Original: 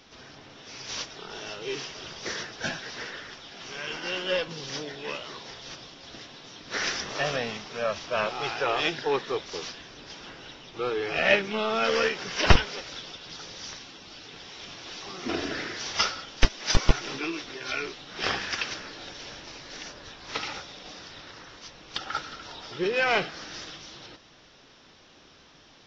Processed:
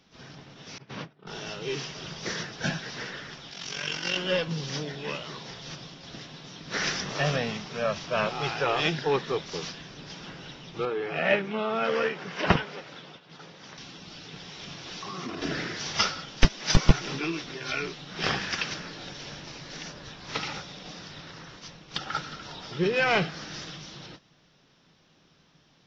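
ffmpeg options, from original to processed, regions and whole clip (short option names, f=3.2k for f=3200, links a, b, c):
-filter_complex "[0:a]asettb=1/sr,asplit=3[a][b][c];[a]atrim=end=0.784[d];[b]atrim=start=0.78:end=1.27,asetpts=PTS-STARTPTS,afade=t=in:d=0.004:c=qsin,afade=t=out:st=0.486:d=0.004:c=qsin,agate=range=-33dB:threshold=-35dB:ratio=3:release=100:detection=peak,highpass=160,lowpass=2.1k,lowshelf=f=250:g=11.5[e];[c]atrim=start=1.266[f];[d][e]acrossfade=d=0.004:c1=hsin:c2=qsin[g];[g][f]acrossfade=d=0.004:c1=qsin:c2=hsin,asettb=1/sr,asplit=3[h][i][j];[h]atrim=end=3.514[k];[i]atrim=start=3.51:end=4.17,asetpts=PTS-STARTPTS,afade=t=in:d=0.004:c=qsin,afade=t=out:st=0.656:d=0.004:c=qsin,highshelf=f=2.5k:g=11.5,tremolo=f=46:d=0.71[l];[j]atrim=start=4.166[m];[k][l]acrossfade=d=0.004:c1=hsin:c2=qsin[n];[n][m]acrossfade=d=0.004:c1=qsin:c2=hsin,asettb=1/sr,asplit=3[o][p][q];[o]atrim=end=10.854[r];[p]atrim=start=10.85:end=13.78,asetpts=PTS-STARTPTS,afade=t=in:d=0.004:c=qsin,afade=t=out:st=2.926:d=0.004:c=qsin,highpass=f=300:p=1,equalizer=f=6k:w=0.63:g=-13[s];[q]atrim=start=13.776[t];[r][s]acrossfade=d=0.004:c1=hsin:c2=qsin[u];[u][t]acrossfade=d=0.004:c1=qsin:c2=hsin,asettb=1/sr,asplit=3[v][w][x];[v]atrim=end=15.024[y];[w]atrim=start=15.02:end=15.42,asetpts=PTS-STARTPTS,afade=t=in:d=0.004:c=qsin,afade=t=out:st=0.396:d=0.004:c=qsin,highpass=62,equalizer=f=1.1k:w=6.7:g=11.5,acompressor=threshold=-33dB:ratio=10:attack=3.2:release=140:knee=1:detection=peak[z];[x]atrim=start=15.416[aa];[y][z]acrossfade=d=0.004:c1=hsin:c2=qsin[ab];[ab][aa]acrossfade=d=0.004:c1=qsin:c2=hsin,agate=range=-9dB:threshold=-48dB:ratio=16:detection=peak,equalizer=f=160:t=o:w=0.75:g=12"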